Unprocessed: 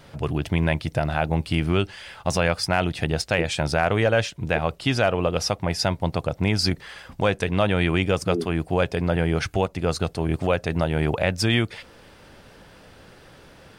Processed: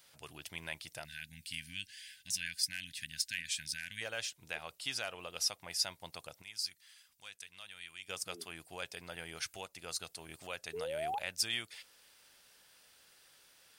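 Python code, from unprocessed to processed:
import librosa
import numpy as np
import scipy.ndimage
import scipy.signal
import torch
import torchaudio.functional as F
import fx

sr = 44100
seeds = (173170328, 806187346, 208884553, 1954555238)

y = fx.spec_paint(x, sr, seeds[0], shape='rise', start_s=10.73, length_s=0.46, low_hz=410.0, high_hz=860.0, level_db=-14.0)
y = F.preemphasis(torch.from_numpy(y), 0.97).numpy()
y = fx.spec_box(y, sr, start_s=1.05, length_s=2.96, low_hz=290.0, high_hz=1500.0, gain_db=-29)
y = fx.tone_stack(y, sr, knobs='5-5-5', at=(6.41, 8.08), fade=0.02)
y = y * librosa.db_to_amplitude(-3.0)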